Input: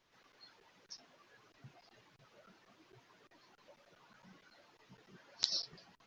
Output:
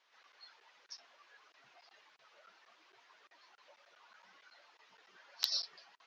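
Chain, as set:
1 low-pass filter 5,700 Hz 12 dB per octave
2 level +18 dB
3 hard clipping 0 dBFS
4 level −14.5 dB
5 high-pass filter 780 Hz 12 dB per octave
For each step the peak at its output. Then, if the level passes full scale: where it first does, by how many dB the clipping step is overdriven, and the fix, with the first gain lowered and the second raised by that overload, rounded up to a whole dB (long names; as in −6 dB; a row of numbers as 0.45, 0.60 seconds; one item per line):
−11.5, +6.5, 0.0, −14.5, −12.5 dBFS
step 2, 6.5 dB
step 2 +11 dB, step 4 −7.5 dB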